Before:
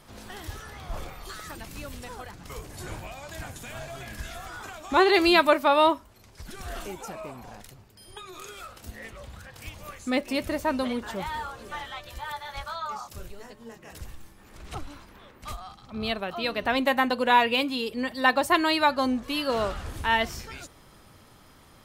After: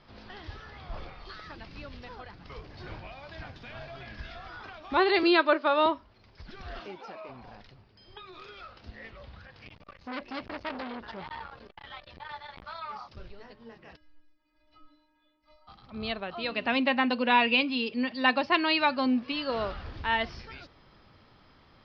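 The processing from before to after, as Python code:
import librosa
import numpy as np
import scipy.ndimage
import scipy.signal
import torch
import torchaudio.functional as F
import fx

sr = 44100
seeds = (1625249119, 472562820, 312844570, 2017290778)

y = fx.cabinet(x, sr, low_hz=310.0, low_slope=24, high_hz=6100.0, hz=(320.0, 450.0, 780.0, 1500.0, 2200.0, 5700.0), db=(5, 7, -5, 4, -4, -5), at=(5.23, 5.86))
y = fx.highpass(y, sr, hz=fx.line((6.78, 130.0), (7.28, 360.0)), slope=12, at=(6.78, 7.28), fade=0.02)
y = fx.transformer_sat(y, sr, knee_hz=2500.0, at=(9.47, 13.17))
y = fx.stiff_resonator(y, sr, f0_hz=300.0, decay_s=0.56, stiffness=0.008, at=(13.95, 15.67), fade=0.02)
y = fx.cabinet(y, sr, low_hz=120.0, low_slope=12, high_hz=6200.0, hz=(240.0, 2600.0, 5100.0), db=(7, 8, 5), at=(16.51, 19.32))
y = scipy.signal.sosfilt(scipy.signal.ellip(4, 1.0, 40, 5000.0, 'lowpass', fs=sr, output='sos'), y)
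y = F.gain(torch.from_numpy(y), -3.5).numpy()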